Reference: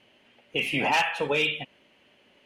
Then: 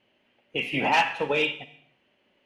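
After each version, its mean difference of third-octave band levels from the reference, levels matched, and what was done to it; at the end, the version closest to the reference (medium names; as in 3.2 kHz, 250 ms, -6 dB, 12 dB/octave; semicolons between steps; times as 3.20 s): 3.5 dB: treble shelf 5.7 kHz -10.5 dB; gated-style reverb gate 360 ms falling, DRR 9.5 dB; upward expansion 1.5:1, over -40 dBFS; trim +3 dB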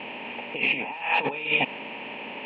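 12.0 dB: spectral levelling over time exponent 0.6; compressor with a negative ratio -28 dBFS, ratio -0.5; cabinet simulation 170–2900 Hz, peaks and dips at 220 Hz +5 dB, 940 Hz +6 dB, 1.5 kHz -6 dB, 2.5 kHz +7 dB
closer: first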